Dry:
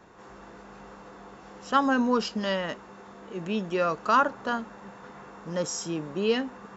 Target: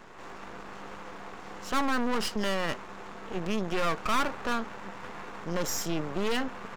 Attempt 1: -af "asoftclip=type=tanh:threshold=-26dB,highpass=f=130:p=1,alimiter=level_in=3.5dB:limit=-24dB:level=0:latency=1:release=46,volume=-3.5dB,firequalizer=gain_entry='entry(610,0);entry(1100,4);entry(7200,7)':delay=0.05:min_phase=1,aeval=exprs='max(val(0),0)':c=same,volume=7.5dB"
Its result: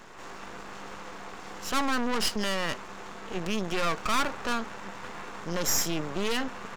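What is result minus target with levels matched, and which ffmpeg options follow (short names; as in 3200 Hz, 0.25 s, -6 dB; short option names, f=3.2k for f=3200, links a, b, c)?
4000 Hz band +2.5 dB
-af "asoftclip=type=tanh:threshold=-26dB,highpass=f=130:p=1,highshelf=f=2.6k:g=-8.5,alimiter=level_in=3.5dB:limit=-24dB:level=0:latency=1:release=46,volume=-3.5dB,firequalizer=gain_entry='entry(610,0);entry(1100,4);entry(7200,7)':delay=0.05:min_phase=1,aeval=exprs='max(val(0),0)':c=same,volume=7.5dB"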